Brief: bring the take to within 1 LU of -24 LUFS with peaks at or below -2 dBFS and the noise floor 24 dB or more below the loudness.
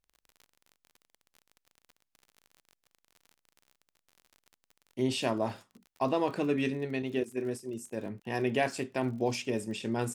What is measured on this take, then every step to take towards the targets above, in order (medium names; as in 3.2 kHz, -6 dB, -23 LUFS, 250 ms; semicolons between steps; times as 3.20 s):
tick rate 42 per s; loudness -32.5 LUFS; peak level -15.5 dBFS; loudness target -24.0 LUFS
-> de-click; trim +8.5 dB